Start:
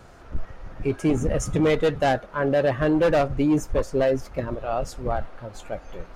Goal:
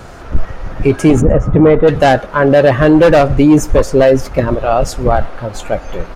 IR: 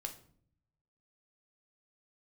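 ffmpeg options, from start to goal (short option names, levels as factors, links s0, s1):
-filter_complex "[0:a]asplit=3[s0][s1][s2];[s0]afade=t=out:st=1.2:d=0.02[s3];[s1]lowpass=1300,afade=t=in:st=1.2:d=0.02,afade=t=out:st=1.87:d=0.02[s4];[s2]afade=t=in:st=1.87:d=0.02[s5];[s3][s4][s5]amix=inputs=3:normalize=0,asplit=2[s6][s7];[s7]adelay=122.4,volume=0.0355,highshelf=f=4000:g=-2.76[s8];[s6][s8]amix=inputs=2:normalize=0,alimiter=level_in=6.31:limit=0.891:release=50:level=0:latency=1,volume=0.891"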